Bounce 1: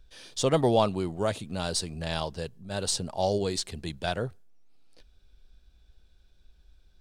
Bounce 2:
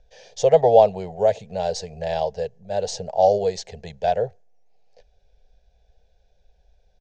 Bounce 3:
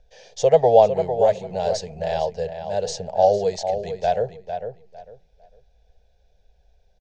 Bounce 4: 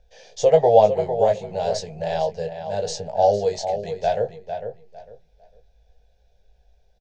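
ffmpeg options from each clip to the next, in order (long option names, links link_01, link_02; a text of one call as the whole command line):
ffmpeg -i in.wav -af "firequalizer=gain_entry='entry(200,0);entry(300,-19);entry(440,12);entry(750,14);entry(1200,-13);entry(1700,3);entry(3600,-4);entry(6500,3);entry(10000,-29)':delay=0.05:min_phase=1,volume=-1.5dB" out.wav
ffmpeg -i in.wav -filter_complex "[0:a]asplit=2[link_01][link_02];[link_02]adelay=452,lowpass=frequency=2800:poles=1,volume=-8dB,asplit=2[link_03][link_04];[link_04]adelay=452,lowpass=frequency=2800:poles=1,volume=0.23,asplit=2[link_05][link_06];[link_06]adelay=452,lowpass=frequency=2800:poles=1,volume=0.23[link_07];[link_01][link_03][link_05][link_07]amix=inputs=4:normalize=0" out.wav
ffmpeg -i in.wav -filter_complex "[0:a]asplit=2[link_01][link_02];[link_02]adelay=19,volume=-5.5dB[link_03];[link_01][link_03]amix=inputs=2:normalize=0,volume=-1dB" out.wav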